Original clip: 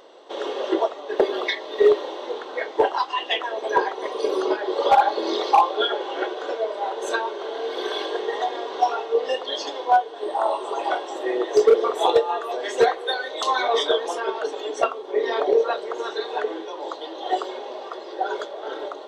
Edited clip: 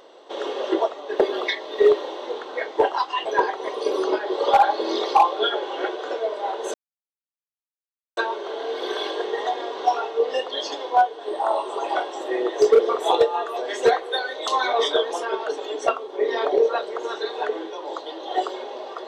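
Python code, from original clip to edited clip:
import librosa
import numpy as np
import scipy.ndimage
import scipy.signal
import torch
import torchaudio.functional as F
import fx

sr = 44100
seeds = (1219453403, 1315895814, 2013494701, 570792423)

y = fx.edit(x, sr, fx.cut(start_s=3.25, length_s=0.38),
    fx.insert_silence(at_s=7.12, length_s=1.43), tone=tone)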